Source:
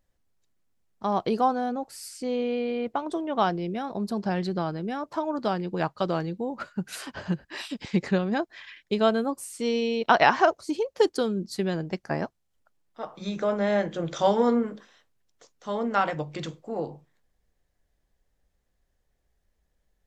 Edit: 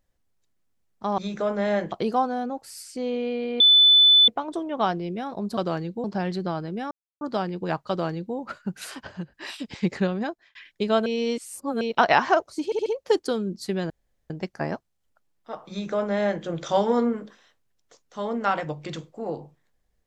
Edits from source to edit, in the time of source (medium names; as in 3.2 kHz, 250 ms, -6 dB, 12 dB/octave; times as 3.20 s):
2.86 s: add tone 3.5 kHz -11.5 dBFS 0.68 s
5.02–5.32 s: mute
6.00–6.47 s: copy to 4.15 s
7.18–7.45 s: gain -6.5 dB
8.26–8.66 s: fade out
9.17–9.92 s: reverse
10.76 s: stutter 0.07 s, 4 plays
11.80 s: insert room tone 0.40 s
13.20–13.94 s: copy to 1.18 s